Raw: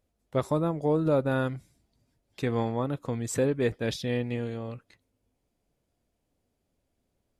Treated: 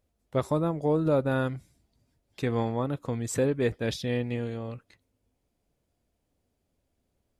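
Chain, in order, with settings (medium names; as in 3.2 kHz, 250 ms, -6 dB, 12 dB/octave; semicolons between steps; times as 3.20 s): peaking EQ 70 Hz +3.5 dB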